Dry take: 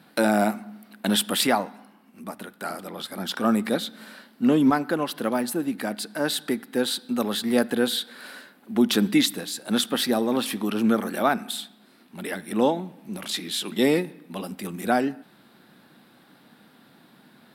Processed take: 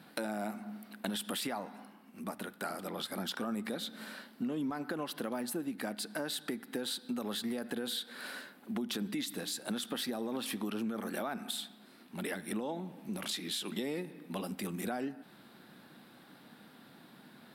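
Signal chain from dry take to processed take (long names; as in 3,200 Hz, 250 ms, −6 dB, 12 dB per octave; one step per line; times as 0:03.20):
brickwall limiter −16.5 dBFS, peak gain reduction 8 dB
downward compressor 4 to 1, threshold −33 dBFS, peak gain reduction 11.5 dB
level −2 dB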